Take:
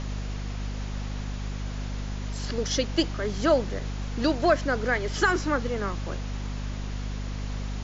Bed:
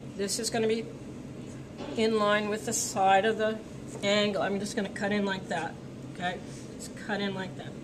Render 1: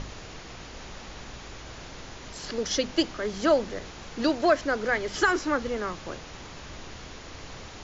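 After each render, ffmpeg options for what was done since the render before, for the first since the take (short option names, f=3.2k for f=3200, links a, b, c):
-af "bandreject=f=50:t=h:w=6,bandreject=f=100:t=h:w=6,bandreject=f=150:t=h:w=6,bandreject=f=200:t=h:w=6,bandreject=f=250:t=h:w=6"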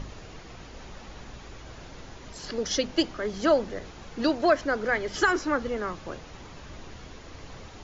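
-af "afftdn=nr=6:nf=-43"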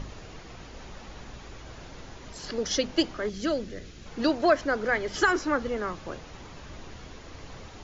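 -filter_complex "[0:a]asettb=1/sr,asplit=3[a][b][c];[a]atrim=end=3.294[d];[b]atrim=start=3.29:end=4.06,asetpts=PTS-STARTPTS,afade=t=in:d=0.004:c=qsin,afade=t=out:st=0.766:d=0.004:c=qsin,equalizer=f=890:w=1.1:g=-15[e];[c]atrim=start=4.056[f];[d][e]acrossfade=d=0.004:c1=hsin:c2=qsin[g];[g][f]acrossfade=d=0.004:c1=qsin:c2=hsin"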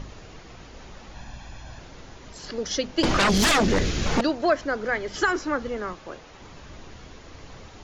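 -filter_complex "[0:a]asettb=1/sr,asplit=3[a][b][c];[a]atrim=end=1.144[d];[b]atrim=start=1.14:end=1.79,asetpts=PTS-STARTPTS,afade=t=in:d=0.004:c=qsin,afade=t=out:st=0.646:d=0.004:c=qsin,aecho=1:1:1.2:0.65,atrim=end_sample=28665[e];[c]atrim=start=1.786[f];[d][e]acrossfade=d=0.004:c1=hsin:c2=qsin[g];[g][f]acrossfade=d=0.004:c1=qsin:c2=hsin,asettb=1/sr,asplit=3[h][i][j];[h]atrim=end=3.034[k];[i]atrim=start=3.03:end=4.21,asetpts=PTS-STARTPTS,afade=t=in:d=0.004:c=qsin,afade=t=out:st=1.176:d=0.004:c=qsin,aeval=exprs='0.158*sin(PI/2*7.08*val(0)/0.158)':c=same[l];[j]atrim=start=4.206[m];[k][l]acrossfade=d=0.004:c1=hsin:c2=qsin[n];[n][m]acrossfade=d=0.004:c1=qsin:c2=hsin,asettb=1/sr,asplit=3[o][p][q];[o]atrim=end=5.944[r];[p]atrim=start=5.94:end=6.42,asetpts=PTS-STARTPTS,afade=t=in:d=0.004:c=qsin,afade=t=out:st=0.476:d=0.004:c=qsin,bass=f=250:g=-7,treble=f=4k:g=-2[s];[q]atrim=start=6.416[t];[r][s]acrossfade=d=0.004:c1=hsin:c2=qsin[u];[u][t]acrossfade=d=0.004:c1=qsin:c2=hsin"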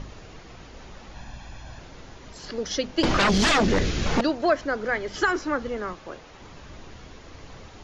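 -filter_complex "[0:a]acrossover=split=8100[a][b];[b]acompressor=threshold=-56dB:ratio=4:attack=1:release=60[c];[a][c]amix=inputs=2:normalize=0,highshelf=f=11k:g=-6.5"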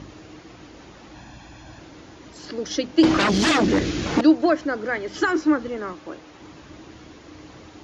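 -af "highpass=77,equalizer=f=310:w=6.2:g=13.5"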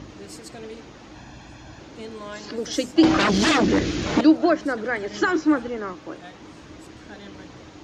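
-filter_complex "[1:a]volume=-11.5dB[a];[0:a][a]amix=inputs=2:normalize=0"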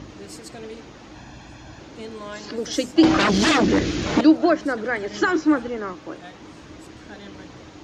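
-af "volume=1dB"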